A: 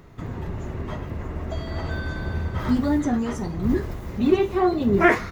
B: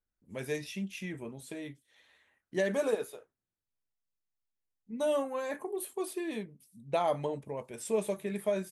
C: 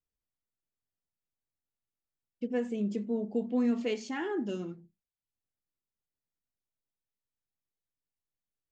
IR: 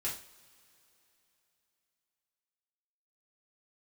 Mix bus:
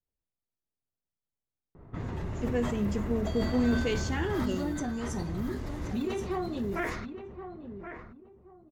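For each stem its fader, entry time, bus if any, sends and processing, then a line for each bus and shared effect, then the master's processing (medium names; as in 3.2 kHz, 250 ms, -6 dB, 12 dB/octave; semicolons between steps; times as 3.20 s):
-3.5 dB, 1.75 s, no send, echo send -10 dB, compression 16:1, threshold -26 dBFS, peak gain reduction 15.5 dB
mute
+1.0 dB, 0.00 s, no send, no echo send, none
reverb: none
echo: feedback delay 1075 ms, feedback 25%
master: level-controlled noise filter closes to 790 Hz, open at -29 dBFS; treble shelf 6.2 kHz +10.5 dB; decay stretcher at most 45 dB/s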